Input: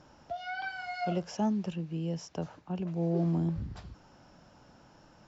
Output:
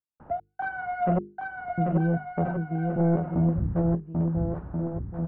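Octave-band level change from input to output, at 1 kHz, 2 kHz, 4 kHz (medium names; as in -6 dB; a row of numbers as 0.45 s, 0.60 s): +8.5 dB, +5.0 dB, under -15 dB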